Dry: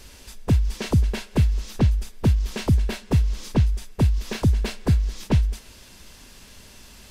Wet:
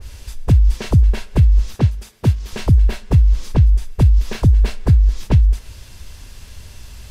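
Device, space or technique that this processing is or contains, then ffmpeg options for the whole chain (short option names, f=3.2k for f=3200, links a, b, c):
car stereo with a boomy subwoofer: -filter_complex "[0:a]asettb=1/sr,asplit=3[a][b][c];[a]atrim=end=1.744[d];[b]atrim=start=1.74:end=2.53,asetpts=PTS-STARTPTS,afade=t=in:d=0.004:c=qsin,afade=t=out:st=0.786:d=0.004:c=qsin,highpass=140[e];[c]atrim=start=2.526[f];[d][e]acrossfade=d=0.004:c1=hsin:c2=qsin[g];[g][f]acrossfade=d=0.004:c1=qsin:c2=hsin,lowshelf=f=140:t=q:w=1.5:g=10,alimiter=limit=-7.5dB:level=0:latency=1:release=193,adynamicequalizer=threshold=0.00562:dfrequency=2200:dqfactor=0.7:tfrequency=2200:tqfactor=0.7:attack=5:release=100:ratio=0.375:range=2:mode=cutabove:tftype=highshelf,volume=3dB"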